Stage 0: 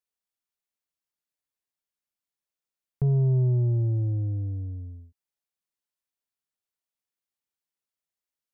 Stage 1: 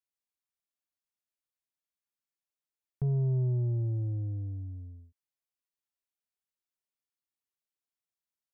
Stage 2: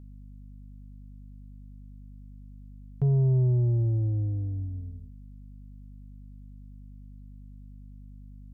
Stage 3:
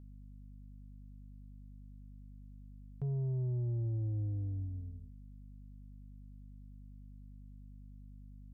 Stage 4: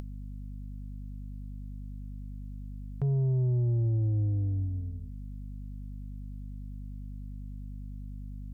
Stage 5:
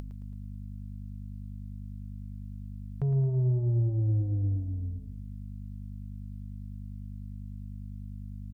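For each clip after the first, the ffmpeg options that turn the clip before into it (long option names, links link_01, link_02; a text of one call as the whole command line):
ffmpeg -i in.wav -af "bandreject=frequency=470:width=12,volume=-6dB" out.wav
ffmpeg -i in.wav -af "aeval=exprs='val(0)+0.00316*(sin(2*PI*50*n/s)+sin(2*PI*2*50*n/s)/2+sin(2*PI*3*50*n/s)/3+sin(2*PI*4*50*n/s)/4+sin(2*PI*5*50*n/s)/5)':channel_layout=same,volume=5.5dB" out.wav
ffmpeg -i in.wav -af "alimiter=level_in=1.5dB:limit=-24dB:level=0:latency=1:release=439,volume=-1.5dB,volume=-6dB" out.wav
ffmpeg -i in.wav -af "acompressor=mode=upward:threshold=-42dB:ratio=2.5,volume=8dB" out.wav
ffmpeg -i in.wav -af "aecho=1:1:110|220|330|440|550:0.251|0.128|0.0653|0.0333|0.017" out.wav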